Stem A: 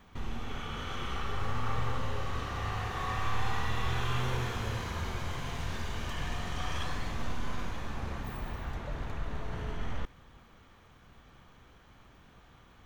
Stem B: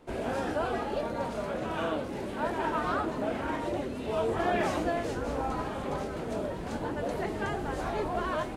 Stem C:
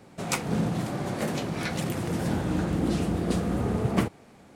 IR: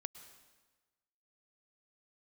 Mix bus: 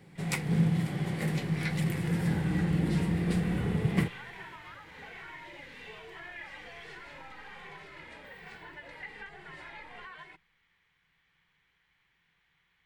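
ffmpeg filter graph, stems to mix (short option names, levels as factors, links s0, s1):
-filter_complex "[0:a]highshelf=f=4700:g=10,volume=0.251,asplit=2[s0][s1];[s1]volume=0.282[s2];[1:a]asplit=2[s3][s4];[s4]adelay=2.2,afreqshift=-1.2[s5];[s3][s5]amix=inputs=2:normalize=1,adelay=1800,volume=1.26[s6];[2:a]bandreject=f=920:w=17,volume=0.562[s7];[s0][s6]amix=inputs=2:normalize=0,bandpass=f=2200:t=q:w=1:csg=0,acompressor=threshold=0.00708:ratio=6,volume=1[s8];[3:a]atrim=start_sample=2205[s9];[s2][s9]afir=irnorm=-1:irlink=0[s10];[s7][s8][s10]amix=inputs=3:normalize=0,equalizer=f=160:t=o:w=0.33:g=12,equalizer=f=250:t=o:w=0.33:g=-6,equalizer=f=630:t=o:w=0.33:g=-9,equalizer=f=1250:t=o:w=0.33:g=-7,equalizer=f=2000:t=o:w=0.33:g=8,equalizer=f=6300:t=o:w=0.33:g=-6"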